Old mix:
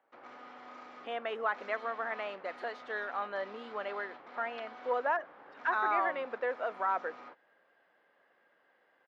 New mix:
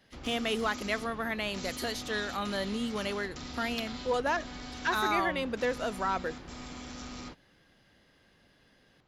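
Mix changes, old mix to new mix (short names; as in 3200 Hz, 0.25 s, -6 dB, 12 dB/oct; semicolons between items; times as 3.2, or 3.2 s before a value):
speech: entry -0.80 s; master: remove Butterworth band-pass 950 Hz, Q 0.73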